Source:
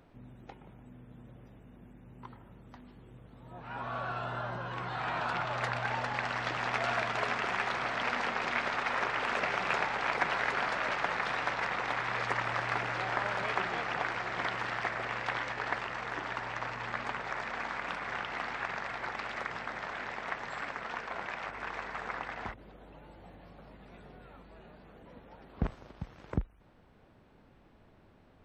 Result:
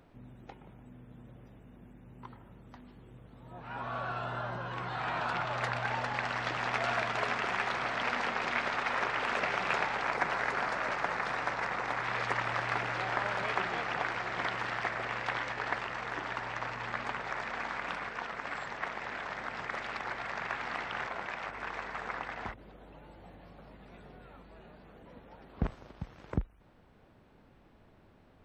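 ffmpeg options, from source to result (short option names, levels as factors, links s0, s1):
-filter_complex "[0:a]asettb=1/sr,asplit=3[s0][s1][s2];[s0]atrim=end=10.024[s3];[s1]atrim=start=10.02:end=12.03,asetpts=PTS-STARTPTS,afade=t=in:d=0.004:c=qsin,afade=t=out:st=2.006:d=0.004:c=qsin,equalizer=f=3200:w=1.4:g=-5[s4];[s2]atrim=start=12.026[s5];[s3][s4]acrossfade=d=0.004:c1=hsin:c2=qsin[s6];[s6][s5]acrossfade=d=0.004:c1=qsin:c2=hsin,asplit=3[s7][s8][s9];[s7]atrim=end=18.092[s10];[s8]atrim=start=18.088:end=21.072,asetpts=PTS-STARTPTS,areverse[s11];[s9]atrim=start=21.068[s12];[s10][s11]acrossfade=d=0.004:c1=hsin:c2=hsin[s13];[s13][s12]acrossfade=d=0.004:c1=hsin:c2=hsin"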